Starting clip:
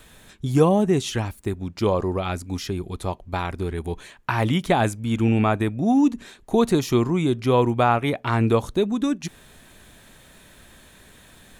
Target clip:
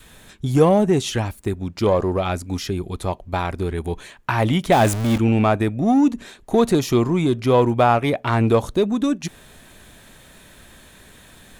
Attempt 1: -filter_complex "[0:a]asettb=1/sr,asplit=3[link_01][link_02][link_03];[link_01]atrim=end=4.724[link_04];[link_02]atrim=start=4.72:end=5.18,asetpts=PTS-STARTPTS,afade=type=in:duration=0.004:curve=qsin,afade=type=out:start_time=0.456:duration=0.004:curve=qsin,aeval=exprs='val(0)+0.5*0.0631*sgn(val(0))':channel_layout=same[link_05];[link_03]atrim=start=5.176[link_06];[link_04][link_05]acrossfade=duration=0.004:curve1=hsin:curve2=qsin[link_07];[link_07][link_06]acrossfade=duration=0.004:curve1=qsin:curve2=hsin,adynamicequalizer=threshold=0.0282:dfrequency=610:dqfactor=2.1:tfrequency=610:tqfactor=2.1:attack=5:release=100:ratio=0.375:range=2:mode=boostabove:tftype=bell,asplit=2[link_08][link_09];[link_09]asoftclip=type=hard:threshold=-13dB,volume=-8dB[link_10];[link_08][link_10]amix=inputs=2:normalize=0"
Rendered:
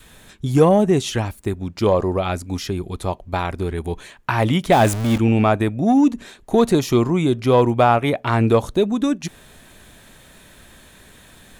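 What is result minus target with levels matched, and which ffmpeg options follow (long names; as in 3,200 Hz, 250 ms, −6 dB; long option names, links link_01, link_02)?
hard clipping: distortion −9 dB
-filter_complex "[0:a]asettb=1/sr,asplit=3[link_01][link_02][link_03];[link_01]atrim=end=4.724[link_04];[link_02]atrim=start=4.72:end=5.18,asetpts=PTS-STARTPTS,afade=type=in:duration=0.004:curve=qsin,afade=type=out:start_time=0.456:duration=0.004:curve=qsin,aeval=exprs='val(0)+0.5*0.0631*sgn(val(0))':channel_layout=same[link_05];[link_03]atrim=start=5.176[link_06];[link_04][link_05]acrossfade=duration=0.004:curve1=hsin:curve2=qsin[link_07];[link_07][link_06]acrossfade=duration=0.004:curve1=qsin:curve2=hsin,adynamicequalizer=threshold=0.0282:dfrequency=610:dqfactor=2.1:tfrequency=610:tqfactor=2.1:attack=5:release=100:ratio=0.375:range=2:mode=boostabove:tftype=bell,asplit=2[link_08][link_09];[link_09]asoftclip=type=hard:threshold=-20.5dB,volume=-8dB[link_10];[link_08][link_10]amix=inputs=2:normalize=0"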